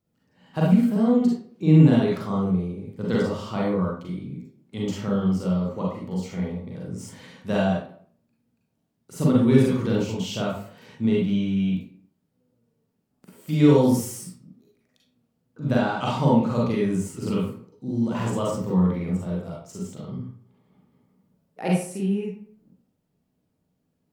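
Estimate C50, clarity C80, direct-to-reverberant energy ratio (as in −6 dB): 1.0 dB, 6.0 dB, −4.5 dB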